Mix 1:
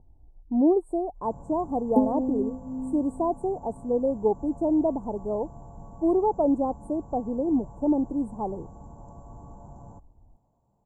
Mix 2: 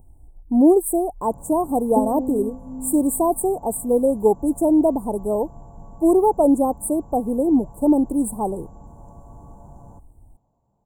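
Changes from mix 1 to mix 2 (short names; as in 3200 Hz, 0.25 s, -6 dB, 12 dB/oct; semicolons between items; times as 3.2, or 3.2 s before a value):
speech: remove ladder low-pass 4300 Hz, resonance 30%; first sound: send +6.5 dB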